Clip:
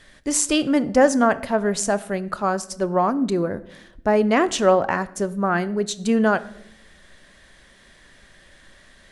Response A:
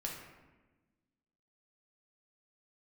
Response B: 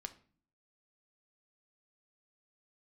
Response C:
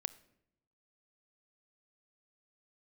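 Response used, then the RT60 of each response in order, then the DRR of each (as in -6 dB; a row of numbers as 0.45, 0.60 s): C; 1.2, 0.45, 0.80 s; -2.0, 7.5, 15.5 dB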